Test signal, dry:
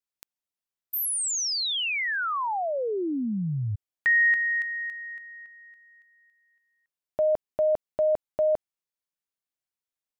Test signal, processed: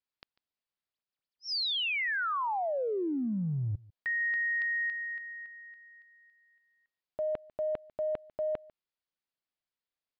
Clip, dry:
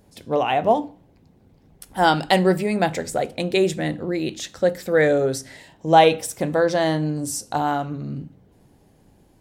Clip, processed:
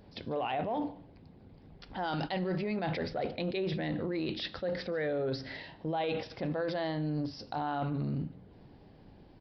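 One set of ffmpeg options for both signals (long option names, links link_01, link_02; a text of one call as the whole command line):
ffmpeg -i in.wav -af "areverse,acompressor=threshold=-29dB:ratio=16:attack=1.7:release=39:knee=1:detection=rms,areverse,aecho=1:1:146:0.075,aresample=11025,aresample=44100" out.wav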